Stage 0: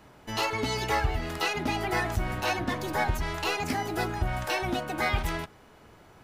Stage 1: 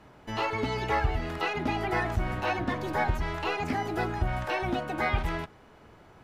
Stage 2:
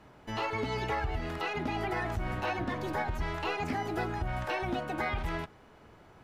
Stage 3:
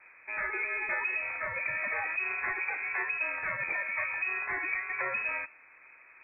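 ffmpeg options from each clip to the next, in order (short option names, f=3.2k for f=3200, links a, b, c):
-filter_complex "[0:a]aemphasis=mode=reproduction:type=cd,acrossover=split=3400[a][b];[b]acompressor=threshold=-48dB:ratio=4:attack=1:release=60[c];[a][c]amix=inputs=2:normalize=0"
-af "alimiter=limit=-20.5dB:level=0:latency=1:release=104,volume=-2dB"
-af "lowpass=f=2.2k:t=q:w=0.5098,lowpass=f=2.2k:t=q:w=0.6013,lowpass=f=2.2k:t=q:w=0.9,lowpass=f=2.2k:t=q:w=2.563,afreqshift=-2600"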